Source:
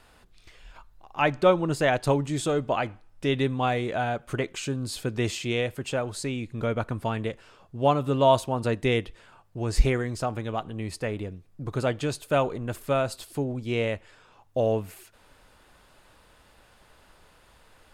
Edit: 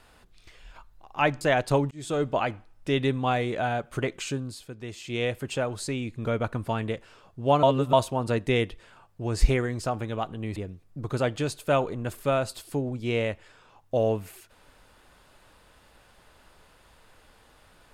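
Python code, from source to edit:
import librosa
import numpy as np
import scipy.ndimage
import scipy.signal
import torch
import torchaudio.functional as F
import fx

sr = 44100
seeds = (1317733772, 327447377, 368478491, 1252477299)

y = fx.edit(x, sr, fx.cut(start_s=1.41, length_s=0.36),
    fx.fade_in_span(start_s=2.27, length_s=0.3),
    fx.fade_down_up(start_s=4.67, length_s=0.96, db=-11.5, fade_s=0.3),
    fx.reverse_span(start_s=7.99, length_s=0.3),
    fx.cut(start_s=10.92, length_s=0.27), tone=tone)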